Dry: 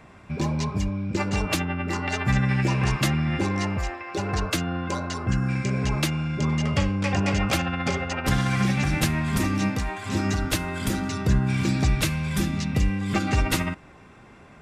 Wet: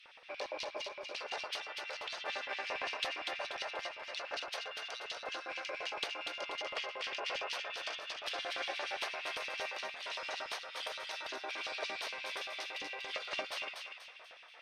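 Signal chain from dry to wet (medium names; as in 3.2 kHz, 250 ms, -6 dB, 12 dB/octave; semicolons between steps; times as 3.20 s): spectral gate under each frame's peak -15 dB weak; compression 2:1, threshold -48 dBFS, peak gain reduction 13 dB; Savitzky-Golay filter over 15 samples; valve stage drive 27 dB, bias 0.75; LFO high-pass square 8.7 Hz 570–2900 Hz; thinning echo 242 ms, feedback 41%, high-pass 890 Hz, level -4.5 dB; trim +5.5 dB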